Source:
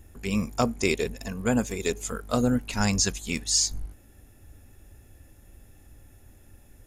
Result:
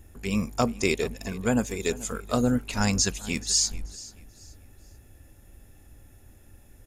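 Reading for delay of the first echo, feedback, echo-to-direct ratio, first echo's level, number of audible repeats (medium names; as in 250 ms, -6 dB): 433 ms, 30%, -18.5 dB, -19.0 dB, 2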